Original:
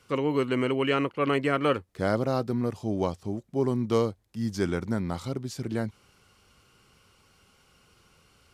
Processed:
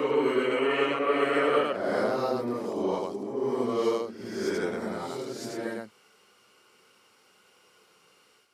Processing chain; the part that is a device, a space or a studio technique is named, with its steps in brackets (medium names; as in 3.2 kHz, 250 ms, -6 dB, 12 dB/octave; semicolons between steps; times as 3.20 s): ghost voice (reverse; reverberation RT60 1.2 s, pre-delay 67 ms, DRR -7.5 dB; reverse; high-pass 340 Hz 12 dB/octave); trim -6 dB